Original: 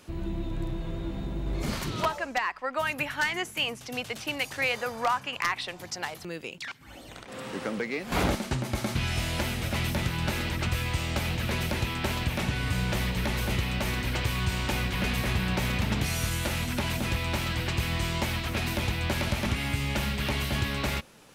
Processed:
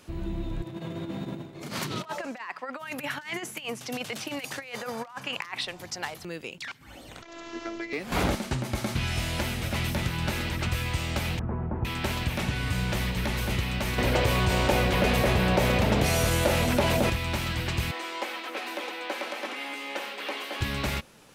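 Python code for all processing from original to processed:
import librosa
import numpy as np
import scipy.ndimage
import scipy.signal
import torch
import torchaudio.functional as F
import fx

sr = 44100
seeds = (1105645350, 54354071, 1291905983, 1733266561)

y = fx.chain(x, sr, fx.over_compress(threshold_db=-33.0, ratio=-0.5),
    fx.highpass(hz=120.0, slope=24), at=(0.62, 5.65))
y = fx.chain(y, sr, fx.resample_bad(factor=3, down='none', up='filtered'),
    fx.robotise(hz=336.0), at=(7.22, 7.93))
y = fx.chain(y, sr, fx.lowpass(hz=1100.0, slope=24),
    fx.peak_eq(hz=560.0, db=-8.0, octaves=0.25), at=(11.39, 11.85))
y = fx.chain(y, sr, fx.peak_eq(hz=550.0, db=12.0, octaves=1.3),
    fx.env_flatten(amount_pct=50), at=(13.98, 17.1))
y = fx.chain(y, sr, fx.steep_highpass(hz=330.0, slope=36),
    fx.high_shelf(hz=3800.0, db=-10.5),
    fx.comb(ms=3.9, depth=0.47), at=(17.91, 20.61))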